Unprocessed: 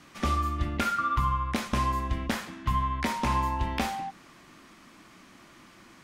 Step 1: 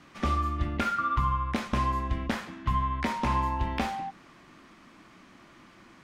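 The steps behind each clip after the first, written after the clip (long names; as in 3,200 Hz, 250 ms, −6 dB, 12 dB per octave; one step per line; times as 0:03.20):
low-pass filter 3,500 Hz 6 dB per octave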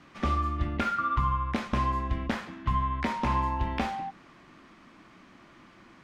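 high-shelf EQ 7,400 Hz −9.5 dB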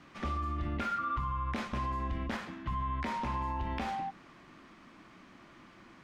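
brickwall limiter −25.5 dBFS, peak gain reduction 8 dB
level −1.5 dB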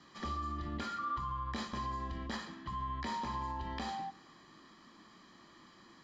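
convolution reverb RT60 0.75 s, pre-delay 3 ms, DRR 15.5 dB
level −4 dB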